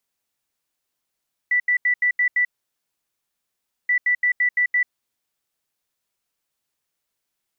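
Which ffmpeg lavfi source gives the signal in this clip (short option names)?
-f lavfi -i "aevalsrc='0.168*sin(2*PI*1970*t)*clip(min(mod(mod(t,2.38),0.17),0.09-mod(mod(t,2.38),0.17))/0.005,0,1)*lt(mod(t,2.38),1.02)':d=4.76:s=44100"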